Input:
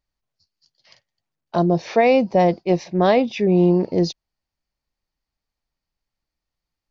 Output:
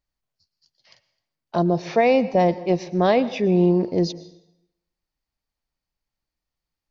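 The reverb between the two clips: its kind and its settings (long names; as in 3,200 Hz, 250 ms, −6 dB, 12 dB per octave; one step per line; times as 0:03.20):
dense smooth reverb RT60 0.81 s, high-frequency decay 0.85×, pre-delay 100 ms, DRR 16 dB
level −2 dB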